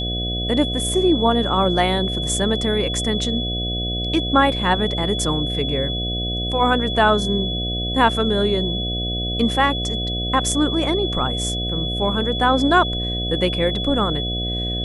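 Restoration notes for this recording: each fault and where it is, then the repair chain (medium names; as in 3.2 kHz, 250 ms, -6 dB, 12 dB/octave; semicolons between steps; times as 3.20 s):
buzz 60 Hz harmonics 12 -26 dBFS
whine 3.4 kHz -25 dBFS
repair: de-hum 60 Hz, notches 12; band-stop 3.4 kHz, Q 30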